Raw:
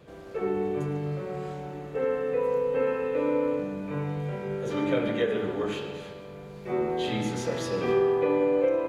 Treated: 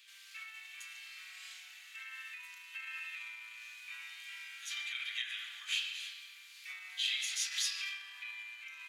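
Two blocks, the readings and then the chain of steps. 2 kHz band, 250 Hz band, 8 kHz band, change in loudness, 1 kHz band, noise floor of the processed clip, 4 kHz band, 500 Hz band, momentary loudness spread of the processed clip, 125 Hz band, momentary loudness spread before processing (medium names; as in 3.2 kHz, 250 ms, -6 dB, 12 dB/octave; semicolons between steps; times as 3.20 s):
-1.0 dB, under -40 dB, no reading, -11.5 dB, -24.0 dB, -55 dBFS, +5.5 dB, under -40 dB, 14 LU, under -40 dB, 12 LU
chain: peak limiter -22.5 dBFS, peak gain reduction 8 dB; inverse Chebyshev high-pass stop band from 520 Hz, stop band 70 dB; trim +7.5 dB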